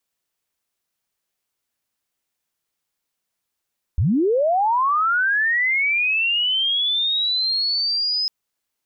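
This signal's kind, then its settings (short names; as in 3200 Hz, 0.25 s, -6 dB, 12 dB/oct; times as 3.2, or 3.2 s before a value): chirp linear 61 Hz -> 5100 Hz -15 dBFS -> -19 dBFS 4.30 s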